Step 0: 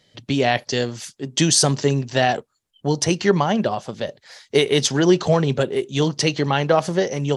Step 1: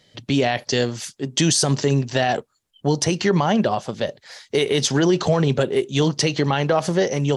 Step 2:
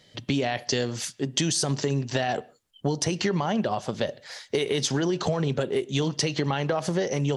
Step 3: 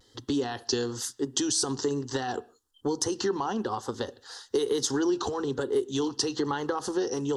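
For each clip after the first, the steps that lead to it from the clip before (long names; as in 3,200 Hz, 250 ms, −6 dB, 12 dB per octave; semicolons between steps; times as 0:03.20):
brickwall limiter −11 dBFS, peak gain reduction 7 dB; level +2.5 dB
downward compressor, threshold −22 dBFS, peak gain reduction 9 dB; on a send at −23 dB: convolution reverb, pre-delay 36 ms
phaser with its sweep stopped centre 620 Hz, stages 6; pitch vibrato 1.1 Hz 57 cents; level +1 dB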